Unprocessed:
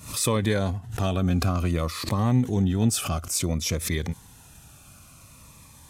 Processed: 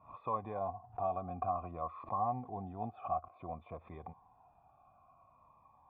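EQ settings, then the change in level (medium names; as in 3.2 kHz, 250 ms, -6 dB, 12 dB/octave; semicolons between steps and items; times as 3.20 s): cascade formant filter a; +4.5 dB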